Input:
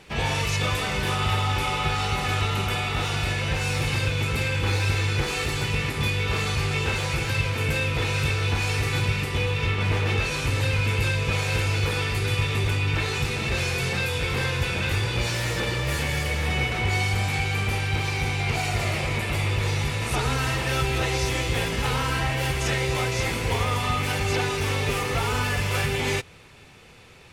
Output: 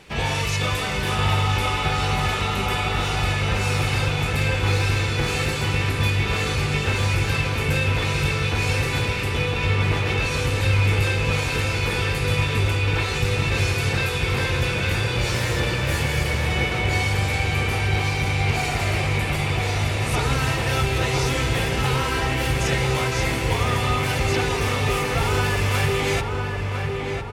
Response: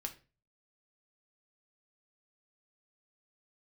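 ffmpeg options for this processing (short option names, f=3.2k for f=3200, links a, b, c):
-filter_complex "[0:a]asplit=2[a][b];[b]adelay=1004,lowpass=f=2k:p=1,volume=-3.5dB,asplit=2[c][d];[d]adelay=1004,lowpass=f=2k:p=1,volume=0.54,asplit=2[e][f];[f]adelay=1004,lowpass=f=2k:p=1,volume=0.54,asplit=2[g][h];[h]adelay=1004,lowpass=f=2k:p=1,volume=0.54,asplit=2[i][j];[j]adelay=1004,lowpass=f=2k:p=1,volume=0.54,asplit=2[k][l];[l]adelay=1004,lowpass=f=2k:p=1,volume=0.54,asplit=2[m][n];[n]adelay=1004,lowpass=f=2k:p=1,volume=0.54[o];[a][c][e][g][i][k][m][o]amix=inputs=8:normalize=0,volume=1.5dB"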